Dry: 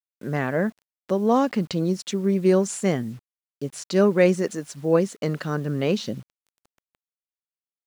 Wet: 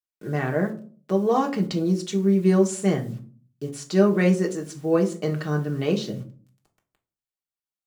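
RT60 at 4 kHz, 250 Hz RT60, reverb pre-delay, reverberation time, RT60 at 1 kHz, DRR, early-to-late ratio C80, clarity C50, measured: 0.25 s, 0.65 s, 3 ms, 0.45 s, 0.40 s, 1.5 dB, 19.0 dB, 14.0 dB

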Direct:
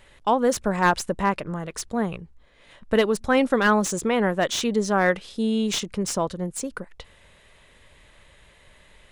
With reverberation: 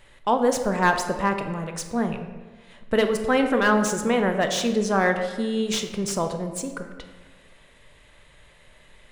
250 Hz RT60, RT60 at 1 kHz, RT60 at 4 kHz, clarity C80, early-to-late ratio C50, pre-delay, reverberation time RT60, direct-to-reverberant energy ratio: 1.6 s, 1.3 s, 0.90 s, 9.5 dB, 8.0 dB, 4 ms, 1.4 s, 5.5 dB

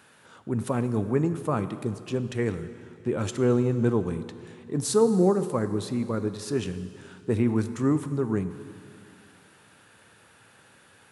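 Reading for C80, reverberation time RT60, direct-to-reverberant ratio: 12.5 dB, 2.5 s, 10.5 dB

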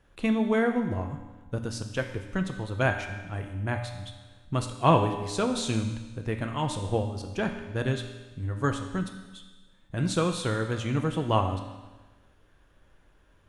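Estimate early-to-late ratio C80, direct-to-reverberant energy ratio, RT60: 8.5 dB, 4.0 dB, 1.3 s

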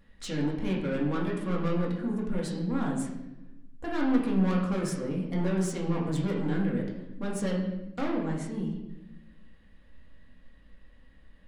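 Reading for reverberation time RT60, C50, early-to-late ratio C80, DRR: 0.95 s, 4.0 dB, 6.5 dB, -3.0 dB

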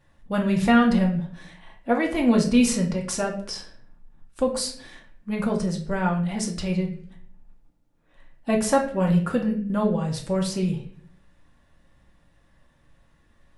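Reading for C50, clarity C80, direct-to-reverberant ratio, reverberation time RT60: 9.0 dB, 12.5 dB, 0.0 dB, 0.55 s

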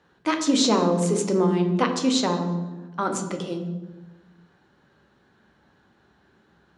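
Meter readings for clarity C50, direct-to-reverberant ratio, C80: 7.5 dB, 4.0 dB, 10.0 dB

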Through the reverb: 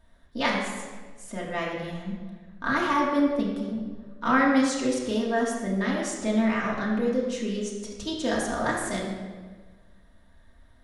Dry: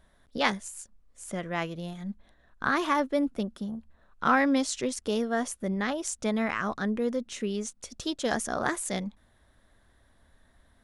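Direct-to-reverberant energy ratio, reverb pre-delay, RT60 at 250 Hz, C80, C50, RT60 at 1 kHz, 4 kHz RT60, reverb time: -5.0 dB, 3 ms, 1.6 s, 4.0 dB, 2.0 dB, 1.3 s, 1.0 s, 1.5 s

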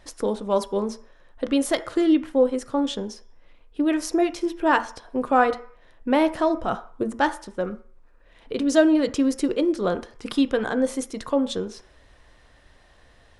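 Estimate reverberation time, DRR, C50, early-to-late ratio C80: 0.50 s, 10.0 dB, 15.0 dB, 19.5 dB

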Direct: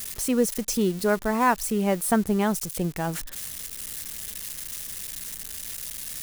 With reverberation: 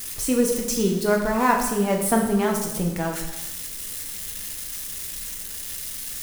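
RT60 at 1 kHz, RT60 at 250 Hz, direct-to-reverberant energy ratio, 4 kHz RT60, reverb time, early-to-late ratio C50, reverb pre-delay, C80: 0.95 s, 0.95 s, 0.5 dB, 0.90 s, 0.95 s, 5.0 dB, 3 ms, 7.5 dB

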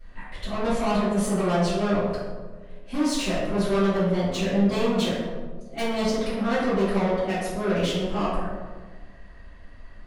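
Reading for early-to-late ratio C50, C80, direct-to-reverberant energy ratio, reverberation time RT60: -0.5 dB, 2.0 dB, -17.0 dB, 1.5 s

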